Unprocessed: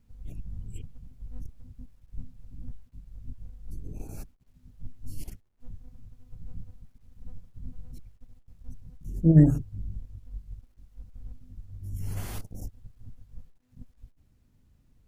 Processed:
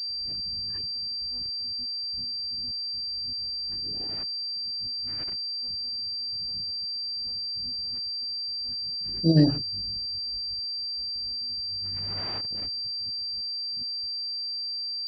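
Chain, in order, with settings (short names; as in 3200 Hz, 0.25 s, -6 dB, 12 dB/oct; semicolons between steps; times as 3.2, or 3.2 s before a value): HPF 430 Hz 6 dB/oct; pulse-width modulation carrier 4700 Hz; gain +5.5 dB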